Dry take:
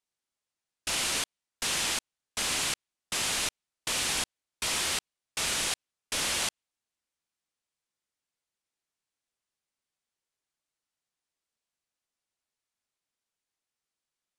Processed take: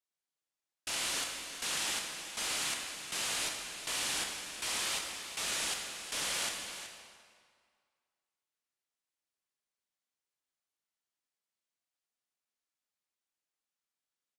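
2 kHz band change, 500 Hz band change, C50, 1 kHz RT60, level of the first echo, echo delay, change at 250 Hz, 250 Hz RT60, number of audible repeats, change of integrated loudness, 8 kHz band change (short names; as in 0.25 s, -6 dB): -4.0 dB, -5.0 dB, 3.0 dB, 2.0 s, -11.5 dB, 0.374 s, -6.5 dB, 1.8 s, 1, -4.5 dB, -4.5 dB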